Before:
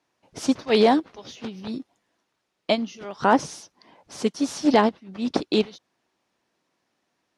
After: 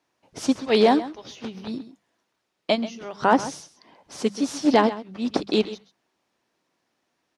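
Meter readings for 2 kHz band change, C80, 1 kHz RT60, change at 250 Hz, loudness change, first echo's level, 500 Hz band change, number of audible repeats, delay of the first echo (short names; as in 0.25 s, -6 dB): 0.0 dB, none, none, 0.0 dB, 0.0 dB, -15.0 dB, 0.0 dB, 1, 0.132 s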